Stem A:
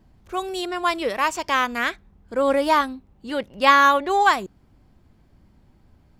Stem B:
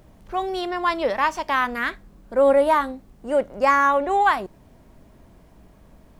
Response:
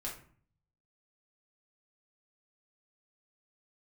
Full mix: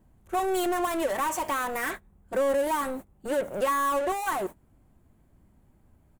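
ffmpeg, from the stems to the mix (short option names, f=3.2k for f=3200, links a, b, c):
-filter_complex "[0:a]aemphasis=mode=reproduction:type=75kf,acompressor=threshold=-25dB:ratio=6,volume=-5dB[a];[1:a]alimiter=limit=-16.5dB:level=0:latency=1:release=172,asplit=2[b][c];[c]highpass=f=720:p=1,volume=27dB,asoftclip=type=tanh:threshold=-16.5dB[d];[b][d]amix=inputs=2:normalize=0,lowpass=f=1.3k:p=1,volume=-6dB,agate=range=-34dB:threshold=-30dB:ratio=16:detection=peak,volume=-1,adelay=4.7,volume=-5.5dB[e];[a][e]amix=inputs=2:normalize=0,aexciter=amount=9.1:drive=5.8:freq=7.1k"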